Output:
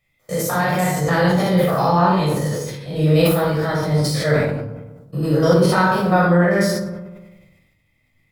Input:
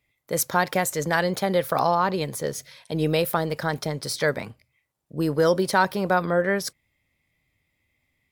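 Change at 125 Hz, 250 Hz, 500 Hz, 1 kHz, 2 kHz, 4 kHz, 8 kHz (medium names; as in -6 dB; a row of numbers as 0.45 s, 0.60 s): +12.0 dB, +9.5 dB, +5.5 dB, +4.5 dB, +4.0 dB, +4.0 dB, +1.0 dB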